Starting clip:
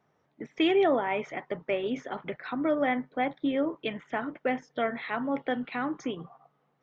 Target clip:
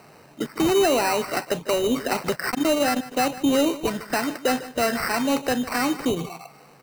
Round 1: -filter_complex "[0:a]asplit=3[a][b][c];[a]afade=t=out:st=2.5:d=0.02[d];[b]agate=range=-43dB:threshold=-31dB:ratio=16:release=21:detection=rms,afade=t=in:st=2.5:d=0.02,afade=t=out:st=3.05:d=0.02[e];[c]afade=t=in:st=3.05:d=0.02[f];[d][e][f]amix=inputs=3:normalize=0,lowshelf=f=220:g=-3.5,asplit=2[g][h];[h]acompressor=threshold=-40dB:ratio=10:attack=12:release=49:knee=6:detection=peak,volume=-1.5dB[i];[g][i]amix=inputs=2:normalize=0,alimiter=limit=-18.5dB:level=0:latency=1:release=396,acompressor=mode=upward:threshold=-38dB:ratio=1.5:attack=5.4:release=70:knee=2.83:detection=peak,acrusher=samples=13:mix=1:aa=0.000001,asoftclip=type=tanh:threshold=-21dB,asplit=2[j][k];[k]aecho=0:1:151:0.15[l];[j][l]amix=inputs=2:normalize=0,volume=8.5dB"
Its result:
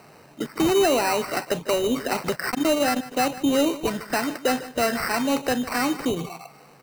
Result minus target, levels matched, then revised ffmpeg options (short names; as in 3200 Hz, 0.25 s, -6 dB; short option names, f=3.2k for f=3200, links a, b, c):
compressor: peak gain reduction +8 dB
-filter_complex "[0:a]asplit=3[a][b][c];[a]afade=t=out:st=2.5:d=0.02[d];[b]agate=range=-43dB:threshold=-31dB:ratio=16:release=21:detection=rms,afade=t=in:st=2.5:d=0.02,afade=t=out:st=3.05:d=0.02[e];[c]afade=t=in:st=3.05:d=0.02[f];[d][e][f]amix=inputs=3:normalize=0,lowshelf=f=220:g=-3.5,asplit=2[g][h];[h]acompressor=threshold=-31dB:ratio=10:attack=12:release=49:knee=6:detection=peak,volume=-1.5dB[i];[g][i]amix=inputs=2:normalize=0,alimiter=limit=-18.5dB:level=0:latency=1:release=396,acompressor=mode=upward:threshold=-38dB:ratio=1.5:attack=5.4:release=70:knee=2.83:detection=peak,acrusher=samples=13:mix=1:aa=0.000001,asoftclip=type=tanh:threshold=-21dB,asplit=2[j][k];[k]aecho=0:1:151:0.15[l];[j][l]amix=inputs=2:normalize=0,volume=8.5dB"